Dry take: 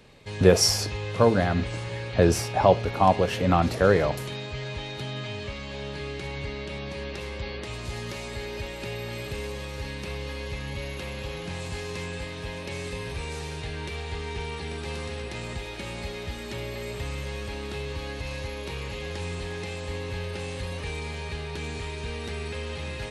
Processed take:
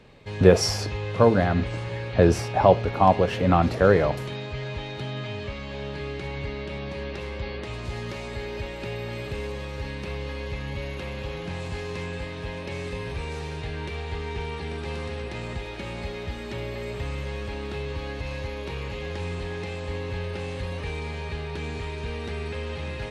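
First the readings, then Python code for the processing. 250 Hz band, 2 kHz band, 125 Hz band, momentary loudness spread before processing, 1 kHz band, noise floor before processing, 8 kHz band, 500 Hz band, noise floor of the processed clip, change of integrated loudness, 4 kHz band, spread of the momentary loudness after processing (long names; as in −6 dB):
+2.0 dB, +0.5 dB, +2.0 dB, 13 LU, +1.5 dB, −37 dBFS, −6.0 dB, +2.0 dB, −35 dBFS, +1.5 dB, −3.0 dB, 14 LU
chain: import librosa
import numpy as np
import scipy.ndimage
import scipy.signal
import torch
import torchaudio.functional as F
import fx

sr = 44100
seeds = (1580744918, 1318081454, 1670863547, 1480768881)

y = fx.lowpass(x, sr, hz=2800.0, slope=6)
y = F.gain(torch.from_numpy(y), 2.0).numpy()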